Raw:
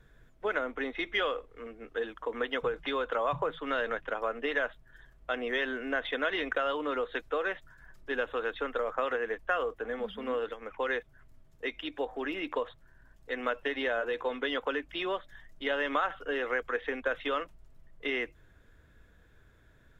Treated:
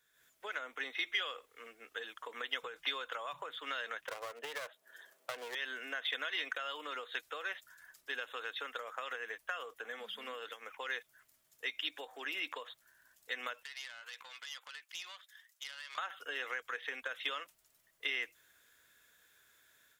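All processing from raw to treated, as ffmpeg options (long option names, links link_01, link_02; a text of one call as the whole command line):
ffmpeg -i in.wav -filter_complex "[0:a]asettb=1/sr,asplit=3[link_01][link_02][link_03];[link_01]atrim=end=4.084[link_04];[link_02]atrim=start=4.08:end=5.55,asetpts=PTS-STARTPTS,afade=type=in:duration=0.004:curve=qsin,afade=type=out:start_time=1.466:duration=0.004:curve=qsin,highpass=frequency=170:width=0.5412,highpass=frequency=170:width=1.3066,equalizer=frequency=520:width_type=o:width=1.6:gain=14.5,aeval=exprs='clip(val(0),-1,0.0422)':channel_layout=same[link_05];[link_03]atrim=start=5.546[link_06];[link_04][link_05]acrossfade=duration=0.004:curve1=hsin:curve2=qsin[link_07];[link_07][link_06]acrossfade=duration=0.004:curve1=qsin:curve2=hsin,asettb=1/sr,asplit=3[link_08][link_09][link_10];[link_08]atrim=end=13.634[link_11];[link_09]atrim=start=13.63:end=15.98,asetpts=PTS-STARTPTS,afade=type=in:duration=0.004:curve=qsin,afade=type=out:start_time=2.346:duration=0.004:curve=qsin,highpass=1100,acompressor=threshold=-39dB:ratio=12:attack=3.2:release=140:knee=1:detection=peak,aeval=exprs='(tanh(70.8*val(0)+0.8)-tanh(0.8))/70.8':channel_layout=same[link_12];[link_10]atrim=start=15.976[link_13];[link_11][link_12]acrossfade=duration=0.004:curve1=hsin:curve2=qsin[link_14];[link_14][link_13]acrossfade=duration=0.004:curve1=qsin:curve2=hsin,acompressor=threshold=-32dB:ratio=6,aderivative,dynaudnorm=framelen=120:gausssize=3:maxgain=9dB,volume=2.5dB" out.wav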